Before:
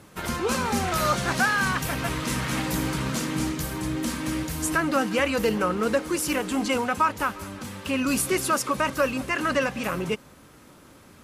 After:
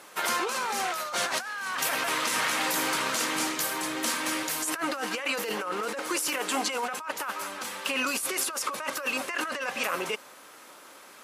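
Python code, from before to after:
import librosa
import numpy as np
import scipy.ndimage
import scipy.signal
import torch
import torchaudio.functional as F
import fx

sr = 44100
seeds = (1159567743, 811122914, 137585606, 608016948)

y = scipy.signal.sosfilt(scipy.signal.butter(2, 600.0, 'highpass', fs=sr, output='sos'), x)
y = fx.over_compress(y, sr, threshold_db=-32.0, ratio=-1.0)
y = F.gain(torch.from_numpy(y), 2.0).numpy()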